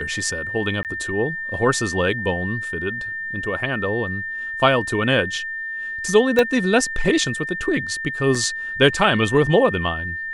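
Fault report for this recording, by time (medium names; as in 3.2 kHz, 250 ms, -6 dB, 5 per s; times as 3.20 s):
whine 1.8 kHz -26 dBFS
0.83–0.85 s: dropout 18 ms
6.39 s: pop -6 dBFS
8.35 s: dropout 4.7 ms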